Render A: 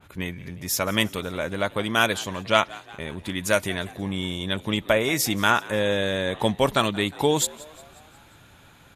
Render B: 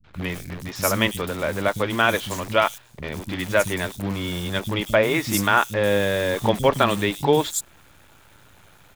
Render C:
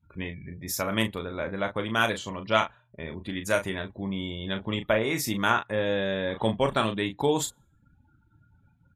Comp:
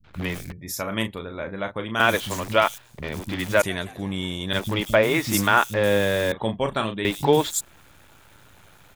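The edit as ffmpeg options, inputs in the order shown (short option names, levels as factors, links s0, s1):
-filter_complex "[2:a]asplit=2[s0][s1];[1:a]asplit=4[s2][s3][s4][s5];[s2]atrim=end=0.522[s6];[s0]atrim=start=0.518:end=2.002[s7];[s3]atrim=start=1.998:end=3.622[s8];[0:a]atrim=start=3.618:end=4.532[s9];[s4]atrim=start=4.528:end=6.322[s10];[s1]atrim=start=6.318:end=7.052[s11];[s5]atrim=start=7.048[s12];[s6][s7]acrossfade=d=0.004:c1=hsin:c2=hsin[s13];[s13][s8]acrossfade=d=0.004:c1=hsin:c2=hsin[s14];[s14][s9]acrossfade=d=0.004:c1=hsin:c2=hsin[s15];[s15][s10]acrossfade=d=0.004:c1=hsin:c2=hsin[s16];[s16][s11]acrossfade=d=0.004:c1=hsin:c2=hsin[s17];[s17][s12]acrossfade=d=0.004:c1=hsin:c2=hsin"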